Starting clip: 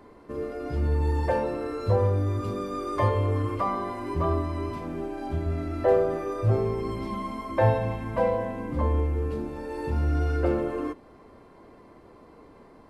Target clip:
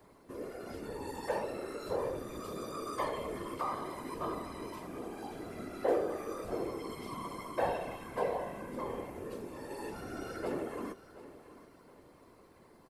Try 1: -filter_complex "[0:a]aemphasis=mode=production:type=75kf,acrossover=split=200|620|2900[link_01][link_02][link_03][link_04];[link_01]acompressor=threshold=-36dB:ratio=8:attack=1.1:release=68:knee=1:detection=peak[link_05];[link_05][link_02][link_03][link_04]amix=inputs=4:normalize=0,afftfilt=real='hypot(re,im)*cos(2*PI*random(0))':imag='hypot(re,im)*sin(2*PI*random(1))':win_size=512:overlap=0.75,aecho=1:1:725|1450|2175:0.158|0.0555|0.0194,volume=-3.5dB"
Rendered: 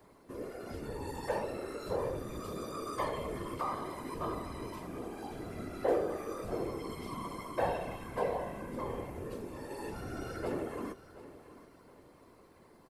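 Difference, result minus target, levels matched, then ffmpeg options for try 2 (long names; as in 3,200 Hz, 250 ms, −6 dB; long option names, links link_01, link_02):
downward compressor: peak gain reduction −8 dB
-filter_complex "[0:a]aemphasis=mode=production:type=75kf,acrossover=split=200|620|2900[link_01][link_02][link_03][link_04];[link_01]acompressor=threshold=-45dB:ratio=8:attack=1.1:release=68:knee=1:detection=peak[link_05];[link_05][link_02][link_03][link_04]amix=inputs=4:normalize=0,afftfilt=real='hypot(re,im)*cos(2*PI*random(0))':imag='hypot(re,im)*sin(2*PI*random(1))':win_size=512:overlap=0.75,aecho=1:1:725|1450|2175:0.158|0.0555|0.0194,volume=-3.5dB"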